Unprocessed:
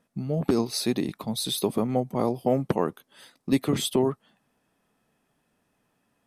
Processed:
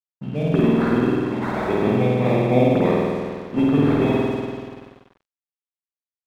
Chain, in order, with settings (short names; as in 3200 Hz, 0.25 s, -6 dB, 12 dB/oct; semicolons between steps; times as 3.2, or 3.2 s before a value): sample-and-hold 15×; tape spacing loss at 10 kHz 26 dB; reverb RT60 2.2 s, pre-delay 48 ms; crossover distortion -46 dBFS; gain +5.5 dB